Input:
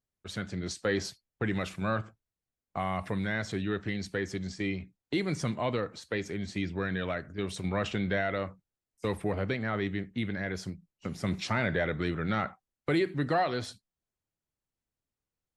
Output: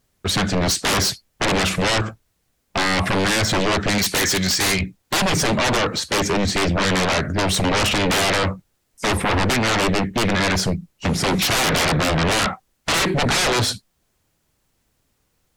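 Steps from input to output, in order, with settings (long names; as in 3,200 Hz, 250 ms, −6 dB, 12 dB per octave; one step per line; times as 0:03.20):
0:03.98–0:04.81: tilt shelving filter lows −8.5 dB, about 660 Hz
sine wavefolder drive 19 dB, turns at −15.5 dBFS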